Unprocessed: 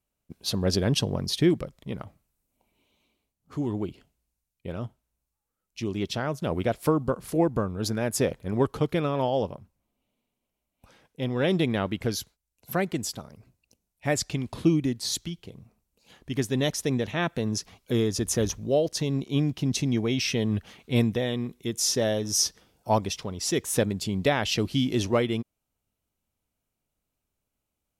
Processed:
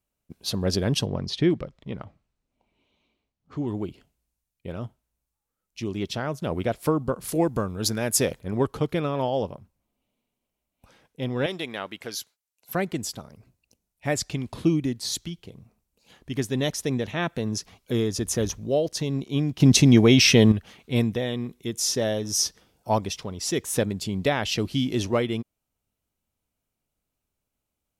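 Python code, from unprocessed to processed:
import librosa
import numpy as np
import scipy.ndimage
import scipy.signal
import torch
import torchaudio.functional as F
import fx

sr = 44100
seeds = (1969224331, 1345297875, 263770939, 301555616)

y = fx.lowpass(x, sr, hz=4600.0, slope=12, at=(1.06, 3.68))
y = fx.high_shelf(y, sr, hz=2900.0, db=9.0, at=(7.21, 8.4))
y = fx.highpass(y, sr, hz=940.0, slope=6, at=(11.46, 12.75))
y = fx.edit(y, sr, fx.clip_gain(start_s=19.6, length_s=0.92, db=10.5), tone=tone)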